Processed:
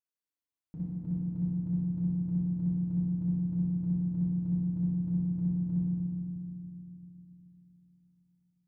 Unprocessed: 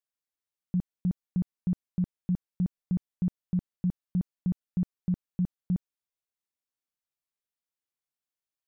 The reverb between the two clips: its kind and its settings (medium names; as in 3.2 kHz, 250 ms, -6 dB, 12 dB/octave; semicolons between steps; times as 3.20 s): FDN reverb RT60 2.5 s, low-frequency decay 1.5×, high-frequency decay 0.6×, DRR -9 dB; trim -13.5 dB